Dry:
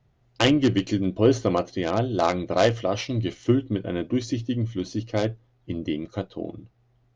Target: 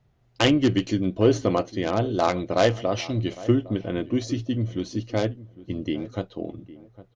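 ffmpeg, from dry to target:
ffmpeg -i in.wav -filter_complex "[0:a]asplit=2[link_01][link_02];[link_02]adelay=807,lowpass=frequency=1200:poles=1,volume=-17dB,asplit=2[link_03][link_04];[link_04]adelay=807,lowpass=frequency=1200:poles=1,volume=0.23[link_05];[link_01][link_03][link_05]amix=inputs=3:normalize=0" out.wav

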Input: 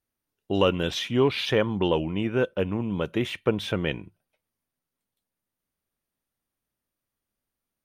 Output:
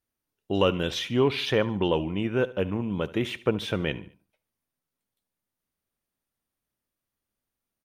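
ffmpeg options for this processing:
ffmpeg -i in.wav -af "aecho=1:1:73|146|219:0.119|0.0499|0.021,volume=-1dB" out.wav

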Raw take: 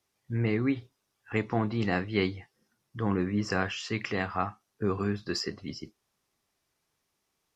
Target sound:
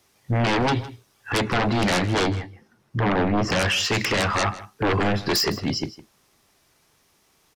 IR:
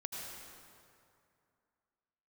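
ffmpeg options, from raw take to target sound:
-filter_complex "[0:a]asplit=3[link_01][link_02][link_03];[link_01]afade=type=out:start_time=2.06:duration=0.02[link_04];[link_02]highshelf=frequency=3200:gain=-12,afade=type=in:start_time=2.06:duration=0.02,afade=type=out:start_time=3.59:duration=0.02[link_05];[link_03]afade=type=in:start_time=3.59:duration=0.02[link_06];[link_04][link_05][link_06]amix=inputs=3:normalize=0,aeval=exprs='0.266*sin(PI/2*7.94*val(0)/0.266)':channel_layout=same,aecho=1:1:159:0.141,volume=-6dB"

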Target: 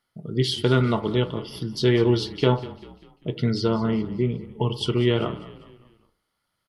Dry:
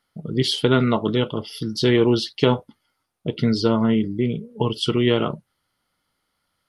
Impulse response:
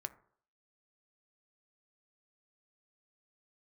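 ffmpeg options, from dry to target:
-filter_complex "[0:a]asettb=1/sr,asplit=3[link_01][link_02][link_03];[link_01]atrim=end=3.914[link_04];[link_02]atrim=start=3.91:end=4.54,asetpts=PTS-STARTPTS,afade=type=in:duration=0.004:curve=qsin,afade=type=out:start_time=0.626:duration=0.004:curve=qsin,acrossover=split=3100[link_05][link_06];[link_06]acompressor=threshold=-55dB:ratio=4:attack=1:release=60[link_07];[link_05][link_07]amix=inputs=2:normalize=0[link_08];[link_03]atrim=start=4.536[link_09];[link_04][link_08]acrossfade=duration=0.004:curve1=hsin:curve2=qsin[link_10];[link_10][link_09]acrossfade=duration=0.004:curve1=qsin:curve2=hsin,asplit=5[link_11][link_12][link_13][link_14][link_15];[link_12]adelay=197,afreqshift=-32,volume=-17dB[link_16];[link_13]adelay=394,afreqshift=-64,volume=-23.6dB[link_17];[link_14]adelay=591,afreqshift=-96,volume=-30.1dB[link_18];[link_15]adelay=788,afreqshift=-128,volume=-36.7dB[link_19];[link_11][link_16][link_17][link_18][link_19]amix=inputs=5:normalize=0[link_20];[1:a]atrim=start_sample=2205[link_21];[link_20][link_21]afir=irnorm=-1:irlink=0,volume=-1dB"

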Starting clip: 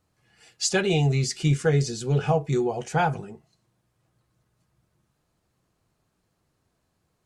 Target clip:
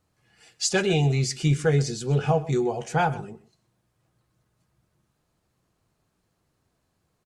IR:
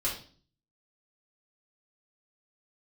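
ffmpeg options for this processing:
-af "aecho=1:1:128:0.119"

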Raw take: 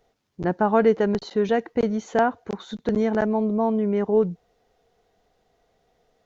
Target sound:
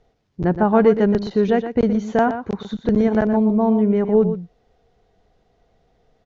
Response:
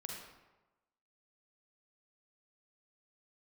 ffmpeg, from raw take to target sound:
-af "lowpass=6000,lowshelf=frequency=230:gain=10,aecho=1:1:120:0.316,volume=1dB"

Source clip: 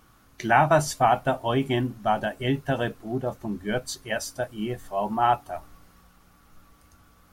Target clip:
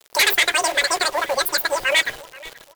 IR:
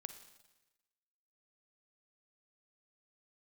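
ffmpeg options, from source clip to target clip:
-filter_complex "[0:a]bandreject=frequency=680:width=17,acrossover=split=140|950[link_01][link_02][link_03];[link_01]aeval=exprs='(mod(100*val(0)+1,2)-1)/100':channel_layout=same[link_04];[link_02]acompressor=threshold=-33dB:ratio=6[link_05];[link_04][link_05][link_03]amix=inputs=3:normalize=0,aeval=exprs='0.282*sin(PI/2*2.82*val(0)/0.282)':channel_layout=same,acrusher=bits=5:mix=0:aa=0.000001,asetrate=117306,aresample=44100,lowshelf=frequency=320:width_type=q:width=1.5:gain=-9.5,asplit=2[link_06][link_07];[link_07]adelay=481,lowpass=frequency=5000:poles=1,volume=-20dB,asplit=2[link_08][link_09];[link_09]adelay=481,lowpass=frequency=5000:poles=1,volume=0.31[link_10];[link_08][link_10]amix=inputs=2:normalize=0[link_11];[link_06][link_11]amix=inputs=2:normalize=0"

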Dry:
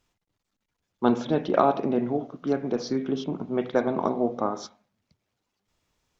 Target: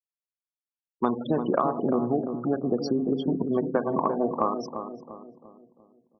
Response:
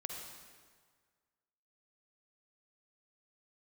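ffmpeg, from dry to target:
-filter_complex "[0:a]afftfilt=real='re*gte(hypot(re,im),0.0398)':imag='im*gte(hypot(re,im),0.0398)':win_size=1024:overlap=0.75,equalizer=frequency=1100:width=5.7:gain=10.5,acompressor=threshold=-26dB:ratio=6,asplit=2[link_01][link_02];[link_02]adelay=346,lowpass=frequency=890:poles=1,volume=-7dB,asplit=2[link_03][link_04];[link_04]adelay=346,lowpass=frequency=890:poles=1,volume=0.48,asplit=2[link_05][link_06];[link_06]adelay=346,lowpass=frequency=890:poles=1,volume=0.48,asplit=2[link_07][link_08];[link_08]adelay=346,lowpass=frequency=890:poles=1,volume=0.48,asplit=2[link_09][link_10];[link_10]adelay=346,lowpass=frequency=890:poles=1,volume=0.48,asplit=2[link_11][link_12];[link_12]adelay=346,lowpass=frequency=890:poles=1,volume=0.48[link_13];[link_01][link_03][link_05][link_07][link_09][link_11][link_13]amix=inputs=7:normalize=0,volume=5dB"

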